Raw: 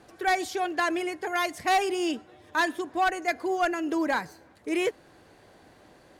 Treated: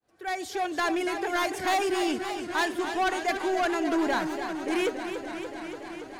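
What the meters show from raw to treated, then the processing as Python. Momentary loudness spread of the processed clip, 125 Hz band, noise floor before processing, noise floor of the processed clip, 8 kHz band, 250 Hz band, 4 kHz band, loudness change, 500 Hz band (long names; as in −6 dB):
9 LU, can't be measured, −56 dBFS, −43 dBFS, +1.0 dB, +1.5 dB, +1.0 dB, −0.5 dB, +1.0 dB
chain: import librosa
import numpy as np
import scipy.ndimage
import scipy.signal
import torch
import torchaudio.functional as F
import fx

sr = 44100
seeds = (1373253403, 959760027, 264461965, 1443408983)

y = fx.fade_in_head(x, sr, length_s=0.83)
y = 10.0 ** (-24.5 / 20.0) * np.tanh(y / 10.0 ** (-24.5 / 20.0))
y = fx.echo_warbled(y, sr, ms=286, feedback_pct=80, rate_hz=2.8, cents=90, wet_db=-9)
y = y * librosa.db_to_amplitude(2.5)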